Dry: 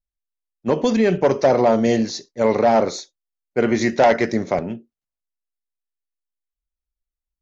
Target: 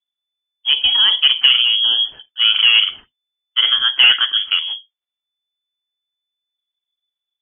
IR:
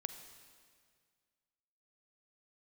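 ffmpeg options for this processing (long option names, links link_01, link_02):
-filter_complex "[0:a]asplit=3[link_01][link_02][link_03];[link_01]afade=type=out:start_time=1.61:duration=0.02[link_04];[link_02]equalizer=frequency=1400:width_type=o:width=1.7:gain=-12.5,afade=type=in:start_time=1.61:duration=0.02,afade=type=out:start_time=2.11:duration=0.02[link_05];[link_03]afade=type=in:start_time=2.11:duration=0.02[link_06];[link_04][link_05][link_06]amix=inputs=3:normalize=0,lowpass=frequency=3000:width_type=q:width=0.5098,lowpass=frequency=3000:width_type=q:width=0.6013,lowpass=frequency=3000:width_type=q:width=0.9,lowpass=frequency=3000:width_type=q:width=2.563,afreqshift=-3500,volume=3dB"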